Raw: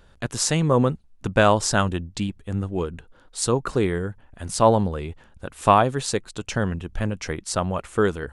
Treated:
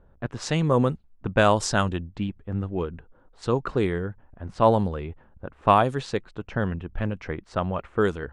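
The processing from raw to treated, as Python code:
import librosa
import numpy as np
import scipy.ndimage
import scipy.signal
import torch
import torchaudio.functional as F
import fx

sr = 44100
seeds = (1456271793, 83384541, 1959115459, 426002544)

y = fx.env_lowpass(x, sr, base_hz=910.0, full_db=-14.0)
y = y * librosa.db_to_amplitude(-2.0)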